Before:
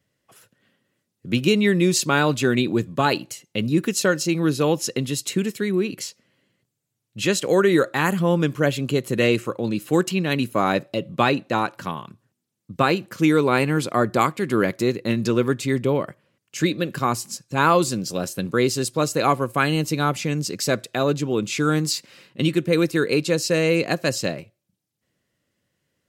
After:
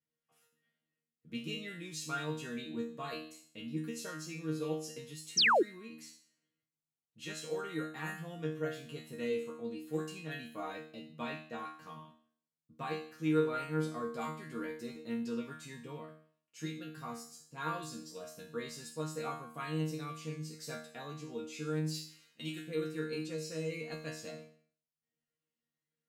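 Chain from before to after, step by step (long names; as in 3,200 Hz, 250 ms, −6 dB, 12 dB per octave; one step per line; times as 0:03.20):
0:21.94–0:22.64: spectral tilt +2.5 dB per octave
resonators tuned to a chord D#3 fifth, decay 0.52 s
0:05.37–0:05.63: sound drawn into the spectrogram fall 300–6,500 Hz −23 dBFS
level −2.5 dB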